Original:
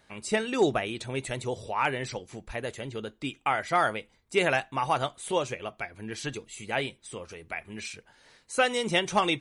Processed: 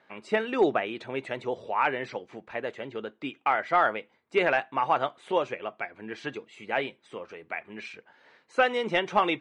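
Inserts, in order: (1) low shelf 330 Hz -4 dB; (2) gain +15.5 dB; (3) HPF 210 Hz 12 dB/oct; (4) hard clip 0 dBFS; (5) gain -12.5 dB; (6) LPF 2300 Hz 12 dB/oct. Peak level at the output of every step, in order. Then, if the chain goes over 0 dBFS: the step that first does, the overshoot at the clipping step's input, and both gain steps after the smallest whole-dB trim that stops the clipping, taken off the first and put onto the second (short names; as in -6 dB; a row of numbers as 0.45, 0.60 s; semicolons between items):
-12.5, +3.0, +5.0, 0.0, -12.5, -12.0 dBFS; step 2, 5.0 dB; step 2 +10.5 dB, step 5 -7.5 dB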